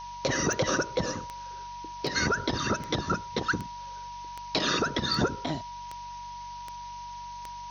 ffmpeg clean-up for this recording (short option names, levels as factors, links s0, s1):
-af "adeclick=t=4,bandreject=f=47.8:t=h:w=4,bandreject=f=95.6:t=h:w=4,bandreject=f=143.4:t=h:w=4,bandreject=f=191.2:t=h:w=4,bandreject=f=960:w=30,afftdn=nr=30:nf=-41"